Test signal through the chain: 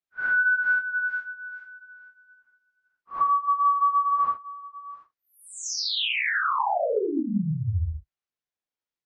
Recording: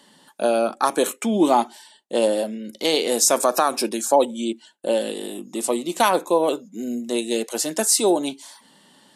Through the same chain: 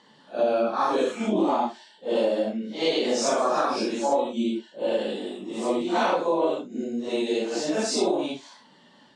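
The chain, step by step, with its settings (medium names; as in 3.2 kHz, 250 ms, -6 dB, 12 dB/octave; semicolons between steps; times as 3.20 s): phase randomisation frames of 200 ms; low-pass 6.6 kHz 24 dB/octave; treble shelf 4.6 kHz -8.5 dB; compression 6:1, threshold -19 dBFS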